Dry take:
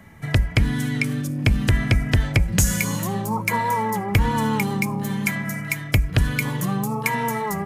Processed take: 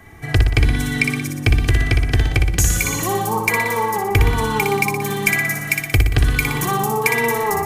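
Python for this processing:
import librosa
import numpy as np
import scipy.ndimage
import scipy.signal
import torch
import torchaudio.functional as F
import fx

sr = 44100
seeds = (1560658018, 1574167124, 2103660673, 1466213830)

y = x + 0.73 * np.pad(x, (int(2.6 * sr / 1000.0), 0))[:len(x)]
y = fx.rider(y, sr, range_db=10, speed_s=0.5)
y = fx.echo_feedback(y, sr, ms=60, feedback_pct=58, wet_db=-5.0)
y = y * 10.0 ** (1.5 / 20.0)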